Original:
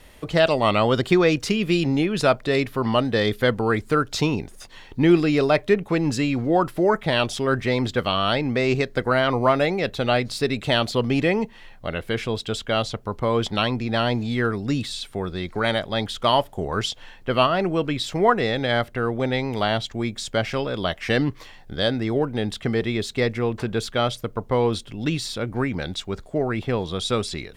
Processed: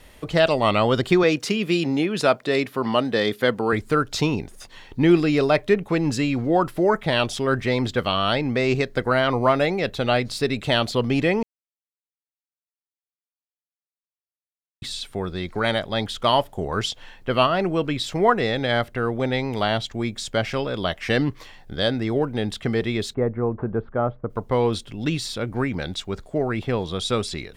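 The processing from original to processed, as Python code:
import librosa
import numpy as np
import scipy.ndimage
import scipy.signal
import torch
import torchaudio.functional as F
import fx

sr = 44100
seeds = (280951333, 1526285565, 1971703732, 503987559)

y = fx.highpass(x, sr, hz=170.0, slope=12, at=(1.23, 3.73))
y = fx.lowpass(y, sr, hz=1300.0, slope=24, at=(23.13, 24.29), fade=0.02)
y = fx.edit(y, sr, fx.silence(start_s=11.43, length_s=3.39), tone=tone)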